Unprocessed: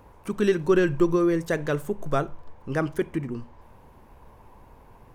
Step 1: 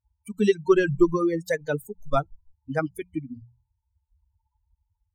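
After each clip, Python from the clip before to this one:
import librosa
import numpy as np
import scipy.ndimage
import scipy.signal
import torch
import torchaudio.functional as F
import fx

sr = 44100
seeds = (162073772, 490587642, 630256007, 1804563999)

y = fx.bin_expand(x, sr, power=3.0)
y = fx.hum_notches(y, sr, base_hz=60, count=3)
y = F.gain(torch.from_numpy(y), 5.5).numpy()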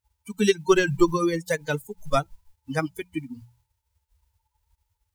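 y = fx.envelope_flatten(x, sr, power=0.6)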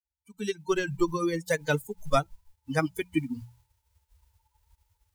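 y = fx.fade_in_head(x, sr, length_s=1.69)
y = fx.rider(y, sr, range_db=4, speed_s=0.5)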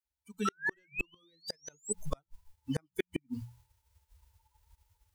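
y = fx.spec_paint(x, sr, seeds[0], shape='rise', start_s=0.45, length_s=1.48, low_hz=1300.0, high_hz=8200.0, level_db=-29.0)
y = fx.gate_flip(y, sr, shuts_db=-19.0, range_db=-41)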